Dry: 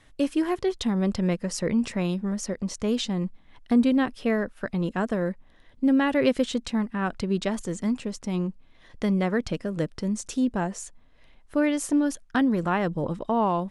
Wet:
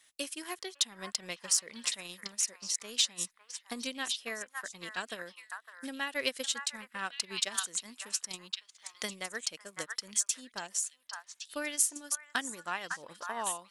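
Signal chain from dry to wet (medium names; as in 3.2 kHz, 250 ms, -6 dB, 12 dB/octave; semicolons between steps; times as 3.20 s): differentiator; repeats whose band climbs or falls 555 ms, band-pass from 1.3 kHz, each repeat 1.4 oct, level -1 dB; in parallel at -7.5 dB: saturation -30 dBFS, distortion -15 dB; on the sum: transient shaper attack +6 dB, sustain -7 dB; random flutter of the level, depth 55%; trim +4.5 dB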